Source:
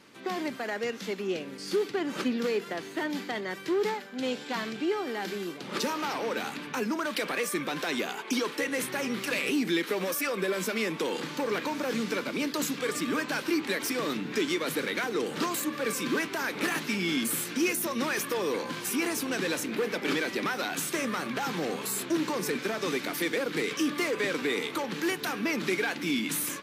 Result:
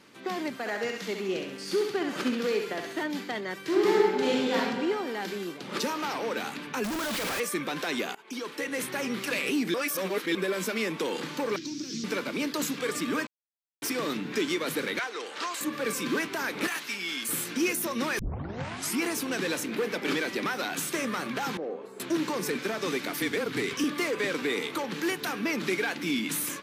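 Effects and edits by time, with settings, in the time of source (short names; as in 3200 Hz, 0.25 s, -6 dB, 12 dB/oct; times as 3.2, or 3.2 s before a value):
0.59–3.03 thinning echo 67 ms, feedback 52%, high-pass 460 Hz, level -4 dB
3.62–4.56 reverb throw, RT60 1.7 s, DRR -5 dB
6.84–7.4 infinite clipping
8.15–9.12 fade in equal-power, from -20 dB
9.74–10.35 reverse
11.56–12.04 EQ curve 140 Hz 0 dB, 240 Hz -6 dB, 340 Hz +3 dB, 500 Hz -25 dB, 770 Hz -27 dB, 2200 Hz -13 dB, 3800 Hz -2 dB, 5600 Hz +10 dB, 10000 Hz -14 dB
13.27–13.82 mute
14.99–15.61 BPF 690–7500 Hz
16.67–17.29 HPF 1200 Hz 6 dB/oct
18.19 tape start 0.82 s
21.57–22 band-pass 490 Hz, Q 1.8
23.2–23.84 frequency shift -32 Hz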